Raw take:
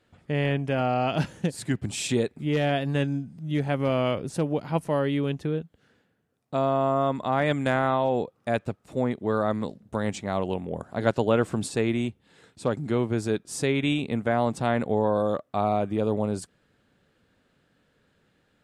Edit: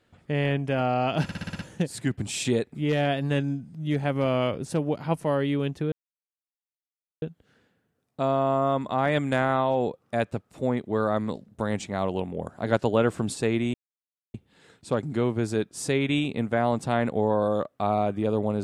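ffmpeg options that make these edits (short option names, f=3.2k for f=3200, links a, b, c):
-filter_complex "[0:a]asplit=9[a][b][c][d][e][f][g][h][i];[a]atrim=end=1.292[j];[b]atrim=start=1.228:end=1.292[k];[c]atrim=start=1.228:end=1.292[l];[d]atrim=start=1.228:end=1.292[m];[e]atrim=start=1.228:end=1.292[n];[f]atrim=start=1.228:end=1.292[o];[g]atrim=start=1.228:end=5.56,asetpts=PTS-STARTPTS,afade=t=out:st=4.328:d=0.004:c=hsin,apad=pad_dur=1.3[p];[h]atrim=start=5.56:end=12.08,asetpts=PTS-STARTPTS,afade=t=in:d=0.004:c=hsin,afade=t=out:st=6.516:d=0.004:c=hsin,apad=pad_dur=0.6[q];[i]atrim=start=12.08,asetpts=PTS-STARTPTS,afade=t=in:d=0.004:c=hsin[r];[j][k]acrossfade=d=0.004:c1=hsin:c2=hsin[s];[s][l]acrossfade=d=0.004:c1=hsin:c2=hsin[t];[t][m]acrossfade=d=0.004:c1=hsin:c2=hsin[u];[u][n]acrossfade=d=0.004:c1=hsin:c2=hsin[v];[v][o]acrossfade=d=0.004:c1=hsin:c2=hsin[w];[p][q][r]concat=n=3:v=0:a=1[x];[w][x]acrossfade=d=0.004:c1=hsin:c2=hsin"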